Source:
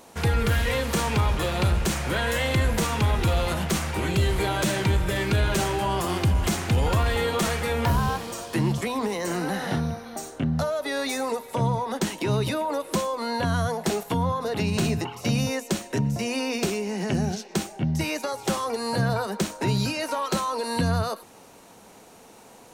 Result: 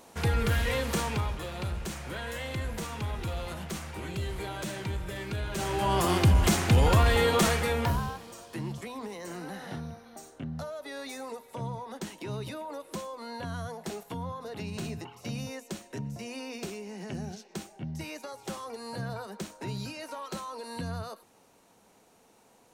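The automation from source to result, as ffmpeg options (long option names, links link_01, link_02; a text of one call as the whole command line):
ffmpeg -i in.wav -af "volume=8.5dB,afade=type=out:start_time=0.91:duration=0.48:silence=0.421697,afade=type=in:start_time=5.52:duration=0.52:silence=0.237137,afade=type=out:start_time=7.42:duration=0.72:silence=0.223872" out.wav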